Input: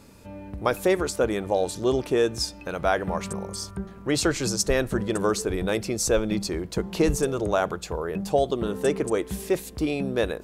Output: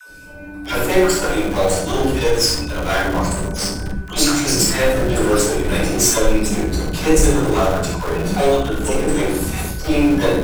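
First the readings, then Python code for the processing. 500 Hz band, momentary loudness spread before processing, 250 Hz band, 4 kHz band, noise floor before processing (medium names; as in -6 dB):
+6.0 dB, 7 LU, +8.5 dB, +10.5 dB, -44 dBFS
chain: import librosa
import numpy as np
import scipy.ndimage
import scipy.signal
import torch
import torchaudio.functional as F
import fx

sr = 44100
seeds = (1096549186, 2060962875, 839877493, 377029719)

p1 = fx.spec_dropout(x, sr, seeds[0], share_pct=29)
p2 = fx.echo_feedback(p1, sr, ms=65, feedback_pct=37, wet_db=-7.0)
p3 = fx.cheby_harmonics(p2, sr, harmonics=(6,), levels_db=(-19,), full_scale_db=-9.5)
p4 = fx.high_shelf(p3, sr, hz=3900.0, db=8.0)
p5 = fx.hum_notches(p4, sr, base_hz=50, count=9)
p6 = fx.room_shoebox(p5, sr, seeds[1], volume_m3=61.0, walls='mixed', distance_m=3.1)
p7 = fx.schmitt(p6, sr, flips_db=-15.0)
p8 = p6 + F.gain(torch.from_numpy(p7), -7.0).numpy()
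p9 = p8 + 10.0 ** (-31.0 / 20.0) * np.sin(2.0 * np.pi * 1500.0 * np.arange(len(p8)) / sr)
p10 = fx.dispersion(p9, sr, late='lows', ms=87.0, hz=460.0)
y = F.gain(torch.from_numpy(p10), -8.0).numpy()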